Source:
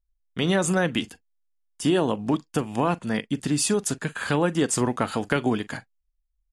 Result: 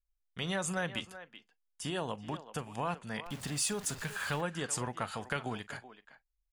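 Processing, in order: 3.26–4.41 zero-crossing step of -31.5 dBFS; bell 300 Hz -11.5 dB 1.2 oct; speakerphone echo 0.38 s, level -13 dB; gain -8.5 dB

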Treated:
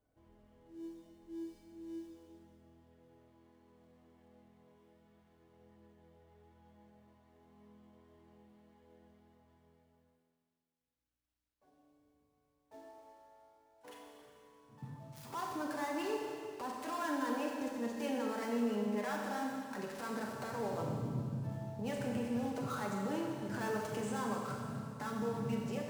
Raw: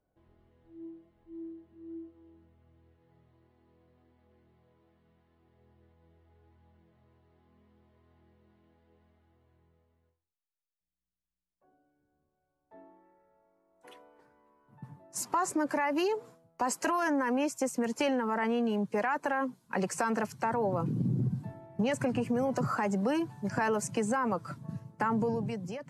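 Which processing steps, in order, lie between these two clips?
switching dead time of 0.087 ms; compressor, threshold -35 dBFS, peak gain reduction 9.5 dB; limiter -31.5 dBFS, peak gain reduction 9 dB; notch comb 180 Hz; Schroeder reverb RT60 2.2 s, combs from 30 ms, DRR -0.5 dB

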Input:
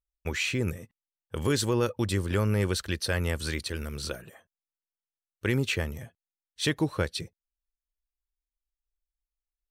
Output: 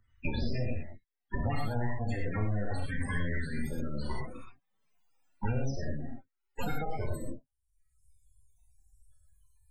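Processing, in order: bell 1800 Hz +8 dB 1.3 oct, from 3.44 s 9100 Hz; full-wave rectifier; loudest bins only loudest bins 16; non-linear reverb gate 0.14 s flat, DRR -2.5 dB; three-band squash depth 100%; gain -5.5 dB

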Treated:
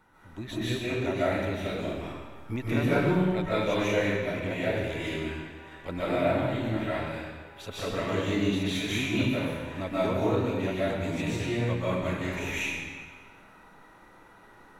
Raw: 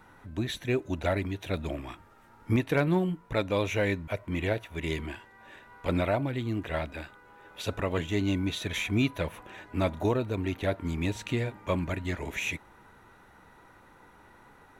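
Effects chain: bell 60 Hz -5 dB 0.83 oct; reverb RT60 1.5 s, pre-delay 0.105 s, DRR -9.5 dB; gain -7.5 dB

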